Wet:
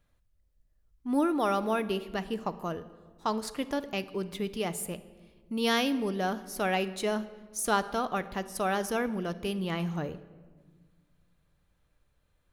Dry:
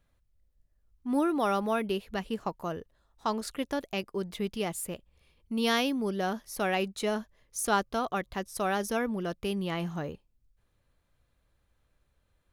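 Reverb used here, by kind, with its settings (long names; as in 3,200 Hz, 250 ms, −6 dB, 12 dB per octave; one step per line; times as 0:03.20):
rectangular room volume 1,500 cubic metres, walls mixed, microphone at 0.43 metres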